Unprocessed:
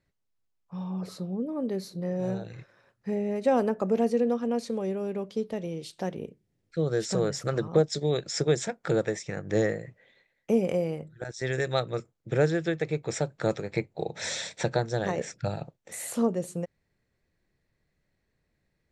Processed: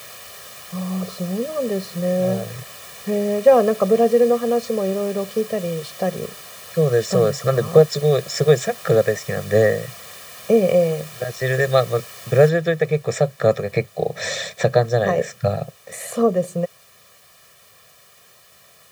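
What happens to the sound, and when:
12.49 noise floor step -44 dB -56 dB
whole clip: HPF 99 Hz; high shelf 3500 Hz -7.5 dB; comb 1.7 ms, depth 95%; gain +7.5 dB

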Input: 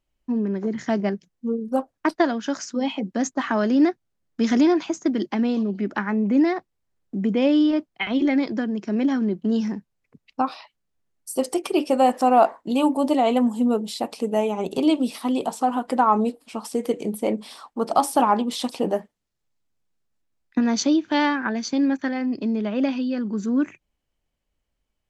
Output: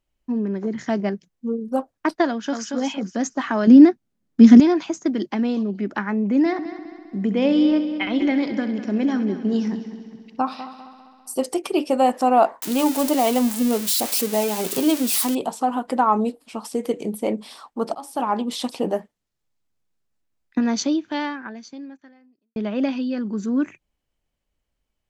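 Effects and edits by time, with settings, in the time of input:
2.29–2.74 echo throw 0.23 s, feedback 30%, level -5 dB
3.67–4.6 bell 230 Hz +13 dB 1 oct
6.39–11.34 multi-head echo 66 ms, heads first and third, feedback 62%, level -13.5 dB
12.62–15.35 switching spikes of -15 dBFS
17.95–18.5 fade in, from -23.5 dB
20.7–22.56 fade out quadratic

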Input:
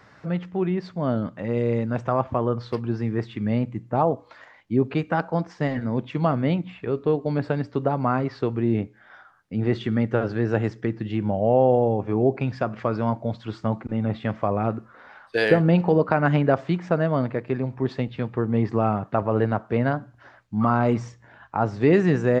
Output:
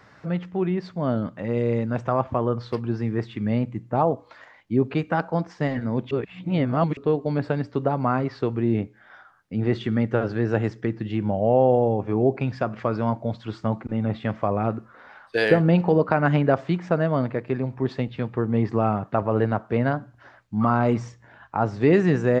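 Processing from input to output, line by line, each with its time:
6.11–6.97 reverse

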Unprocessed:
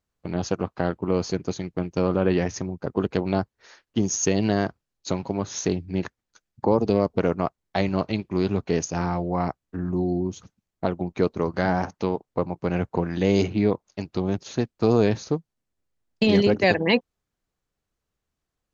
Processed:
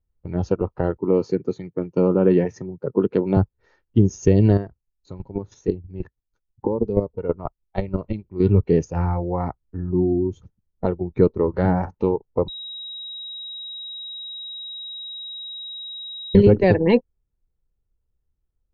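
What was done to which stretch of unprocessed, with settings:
0.97–3.37 HPF 130 Hz 24 dB/oct
4.55–8.4 chopper 6.2 Hz, depth 65%, duty 15%
12.48–16.35 bleep 3820 Hz -19 dBFS
whole clip: comb 2.2 ms, depth 33%; spectral noise reduction 9 dB; tilt -4.5 dB/oct; gain -1.5 dB

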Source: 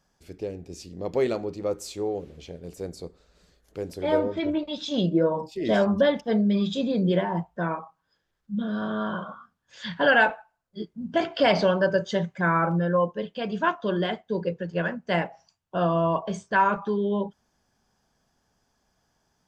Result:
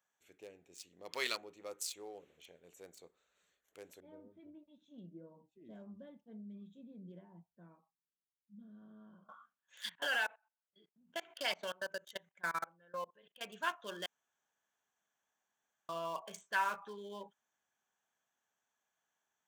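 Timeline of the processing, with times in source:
1.11–1.36 spectral gain 900–5300 Hz +9 dB
4–9.29 EQ curve 230 Hz 0 dB, 480 Hz -15 dB, 970 Hz -23 dB, 1800 Hz -29 dB
9.89–13.41 level quantiser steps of 22 dB
14.06–15.89 room tone
whole clip: Wiener smoothing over 9 samples; differentiator; gain +3.5 dB

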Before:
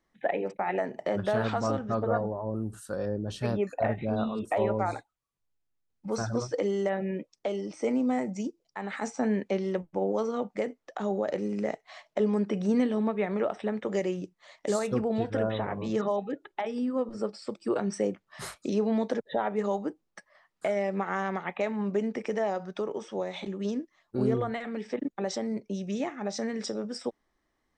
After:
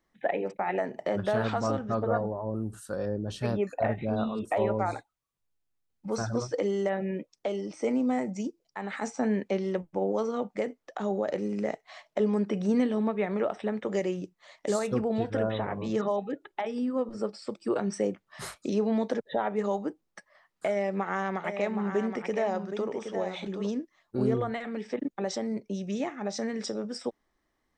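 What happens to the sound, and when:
20.67–23.68 echo 0.771 s -8 dB

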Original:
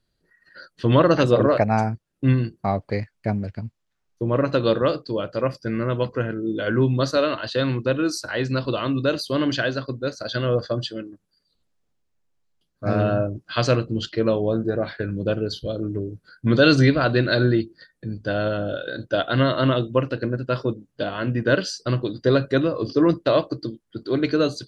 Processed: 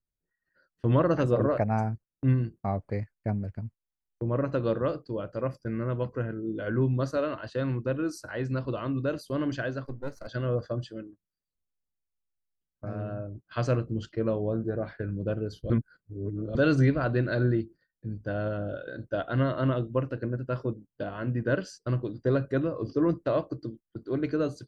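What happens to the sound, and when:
9.84–10.27 half-wave gain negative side -7 dB
12.85–13.49 compressor 1.5:1, threshold -38 dBFS
15.7–16.55 reverse
whole clip: bell 3900 Hz -12.5 dB 1.1 oct; gate -38 dBFS, range -14 dB; low shelf 98 Hz +9 dB; gain -8 dB

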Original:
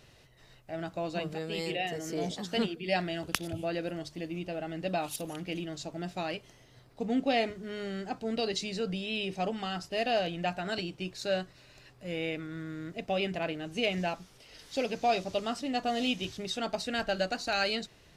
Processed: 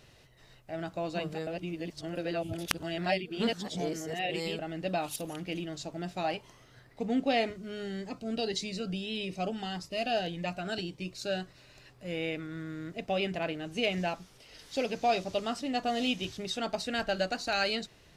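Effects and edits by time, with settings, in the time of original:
1.47–4.59 reverse
6.23–7.01 bell 690 Hz -> 2200 Hz +14 dB 0.27 oct
7.56–11.42 cascading phaser rising 1.7 Hz

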